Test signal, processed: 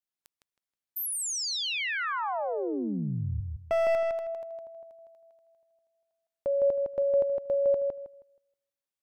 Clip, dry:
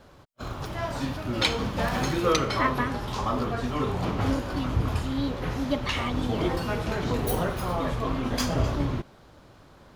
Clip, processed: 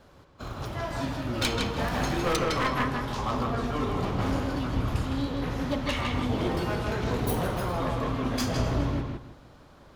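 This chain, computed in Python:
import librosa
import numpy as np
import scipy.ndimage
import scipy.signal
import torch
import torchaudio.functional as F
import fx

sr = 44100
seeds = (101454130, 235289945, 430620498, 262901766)

y = np.minimum(x, 2.0 * 10.0 ** (-20.5 / 20.0) - x)
y = fx.echo_filtered(y, sr, ms=159, feedback_pct=25, hz=5000.0, wet_db=-3.0)
y = y * 10.0 ** (-2.5 / 20.0)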